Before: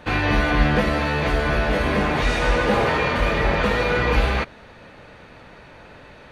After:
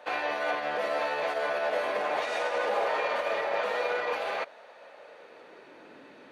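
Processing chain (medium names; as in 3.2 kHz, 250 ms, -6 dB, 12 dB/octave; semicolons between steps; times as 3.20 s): peak limiter -14 dBFS, peak gain reduction 7 dB; high-pass sweep 600 Hz -> 280 Hz, 4.92–5.94 s; trim -8 dB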